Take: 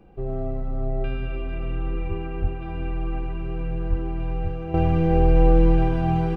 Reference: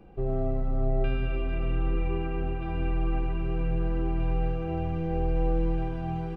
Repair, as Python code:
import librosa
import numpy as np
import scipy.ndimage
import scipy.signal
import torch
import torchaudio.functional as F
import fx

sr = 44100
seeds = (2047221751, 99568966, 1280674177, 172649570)

y = fx.fix_deplosive(x, sr, at_s=(2.08, 2.41, 3.89, 4.43))
y = fx.gain(y, sr, db=fx.steps((0.0, 0.0), (4.74, -10.0)))